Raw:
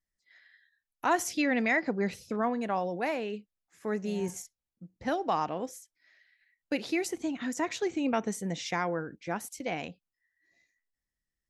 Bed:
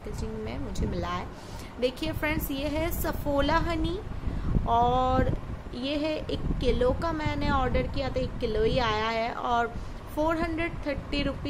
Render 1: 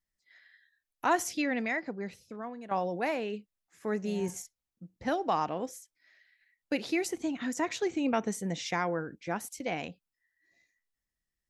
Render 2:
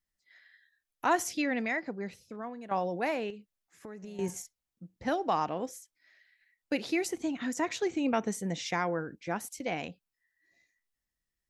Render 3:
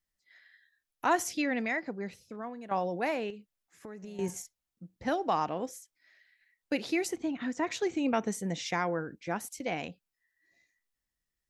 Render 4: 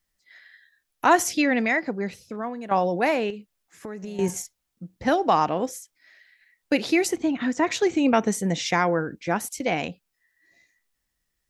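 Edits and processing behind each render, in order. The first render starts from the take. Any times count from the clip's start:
1.11–2.71 s: fade out quadratic, to -11.5 dB
3.30–4.19 s: compression 12:1, threshold -40 dBFS
7.16–7.67 s: distance through air 130 m
trim +9 dB

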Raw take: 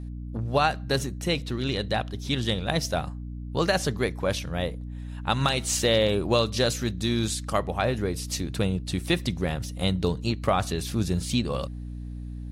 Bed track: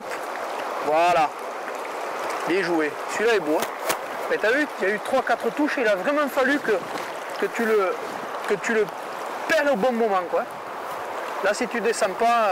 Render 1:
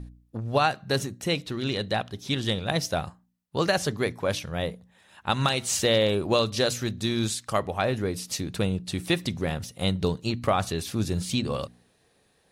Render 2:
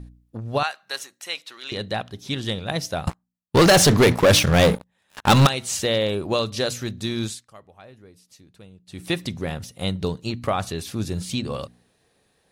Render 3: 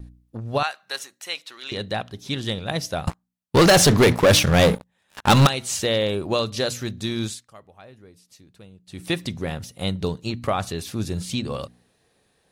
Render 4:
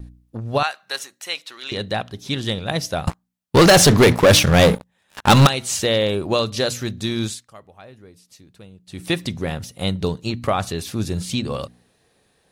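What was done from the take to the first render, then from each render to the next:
de-hum 60 Hz, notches 5
0.63–1.72 s: high-pass 1 kHz; 3.07–5.47 s: waveshaping leveller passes 5; 7.23–9.11 s: dip -20.5 dB, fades 0.25 s
vibrato 0.95 Hz 14 cents
trim +3 dB

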